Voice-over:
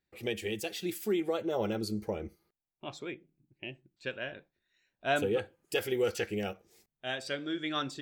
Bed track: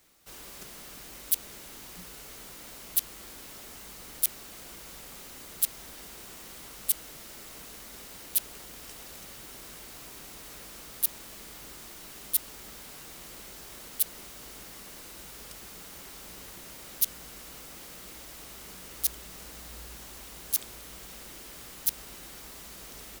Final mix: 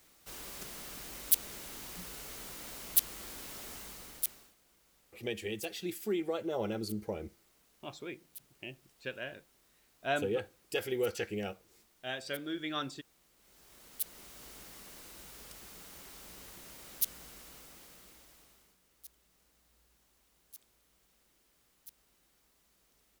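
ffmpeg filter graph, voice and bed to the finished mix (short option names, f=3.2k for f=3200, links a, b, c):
-filter_complex "[0:a]adelay=5000,volume=-3dB[a];[1:a]volume=17.5dB,afade=t=out:st=3.73:d=0.82:silence=0.0707946,afade=t=in:st=13.37:d=1.08:silence=0.133352,afade=t=out:st=17.21:d=1.56:silence=0.1[b];[a][b]amix=inputs=2:normalize=0"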